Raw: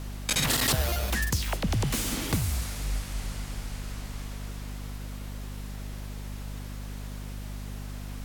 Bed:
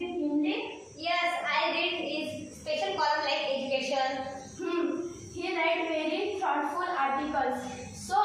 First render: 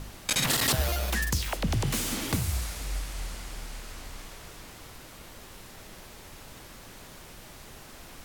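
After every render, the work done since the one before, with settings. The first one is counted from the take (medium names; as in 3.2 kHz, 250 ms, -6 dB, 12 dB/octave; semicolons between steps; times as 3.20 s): de-hum 50 Hz, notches 10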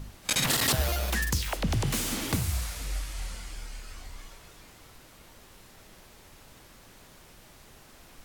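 noise print and reduce 6 dB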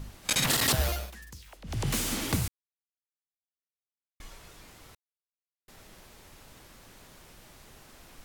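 0.86–1.90 s: dip -19 dB, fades 0.26 s; 2.48–4.20 s: mute; 4.95–5.68 s: mute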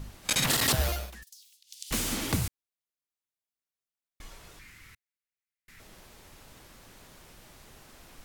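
1.23–1.91 s: inverse Chebyshev high-pass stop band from 1.1 kHz, stop band 60 dB; 4.59–5.80 s: FFT filter 110 Hz 0 dB, 250 Hz -5 dB, 680 Hz -16 dB, 2.1 kHz +9 dB, 3.2 kHz -2 dB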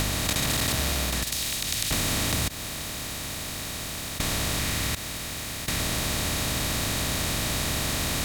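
spectral levelling over time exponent 0.2; compression 3:1, threshold -24 dBFS, peak gain reduction 6.5 dB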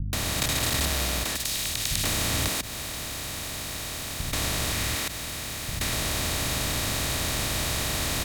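bands offset in time lows, highs 130 ms, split 200 Hz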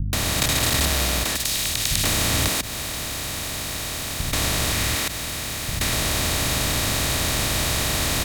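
trim +5 dB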